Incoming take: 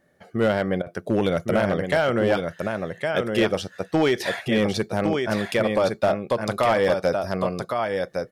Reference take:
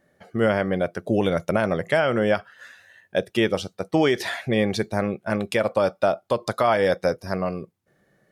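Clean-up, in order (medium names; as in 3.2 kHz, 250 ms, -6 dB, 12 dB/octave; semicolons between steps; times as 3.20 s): clip repair -13 dBFS; interpolate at 0.82 s, 42 ms; inverse comb 1111 ms -5.5 dB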